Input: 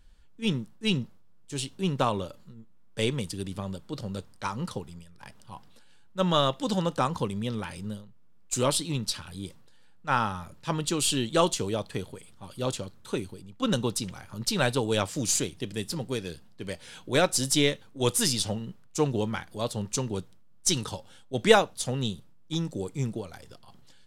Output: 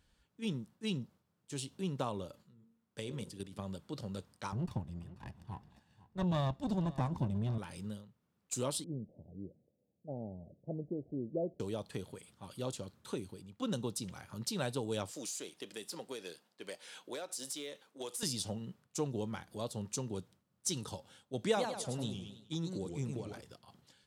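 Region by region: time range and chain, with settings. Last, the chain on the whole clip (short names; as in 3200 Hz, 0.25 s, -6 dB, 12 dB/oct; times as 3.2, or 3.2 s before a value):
2.42–3.59 de-hum 45.7 Hz, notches 34 + level quantiser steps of 11 dB
4.52–7.58 minimum comb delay 1.1 ms + tilt -3 dB/oct + echo 0.49 s -20 dB
8.84–11.6 steep low-pass 680 Hz 72 dB/oct + low shelf 170 Hz -5.5 dB
15.11–18.23 HPF 400 Hz + compressor 5:1, threshold -31 dBFS + hard clip -26.5 dBFS
21.46–23.41 LPF 11000 Hz + warbling echo 0.103 s, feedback 38%, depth 203 cents, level -6.5 dB
whole clip: HPF 77 Hz; dynamic EQ 2000 Hz, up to -6 dB, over -43 dBFS, Q 0.73; compressor 1.5:1, threshold -35 dBFS; gain -5 dB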